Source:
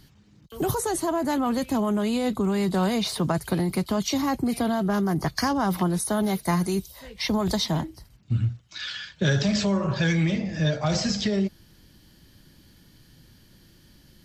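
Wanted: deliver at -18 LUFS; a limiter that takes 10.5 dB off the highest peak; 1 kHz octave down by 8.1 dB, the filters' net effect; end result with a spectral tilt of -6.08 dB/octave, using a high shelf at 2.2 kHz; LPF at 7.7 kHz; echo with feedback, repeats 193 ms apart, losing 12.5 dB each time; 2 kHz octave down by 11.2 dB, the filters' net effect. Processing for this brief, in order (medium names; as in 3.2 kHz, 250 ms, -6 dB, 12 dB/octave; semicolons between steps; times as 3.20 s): low-pass 7.7 kHz; peaking EQ 1 kHz -8 dB; peaking EQ 2 kHz -8.5 dB; treble shelf 2.2 kHz -6 dB; peak limiter -23.5 dBFS; feedback delay 193 ms, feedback 24%, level -12.5 dB; trim +13 dB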